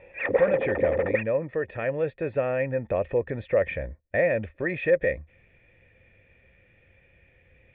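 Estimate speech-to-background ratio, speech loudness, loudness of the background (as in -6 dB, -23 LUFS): 0.0 dB, -27.0 LUFS, -27.0 LUFS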